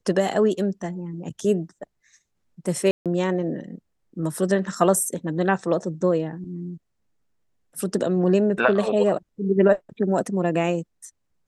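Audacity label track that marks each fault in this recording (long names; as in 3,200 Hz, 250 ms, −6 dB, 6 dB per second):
2.910000	3.060000	drop-out 147 ms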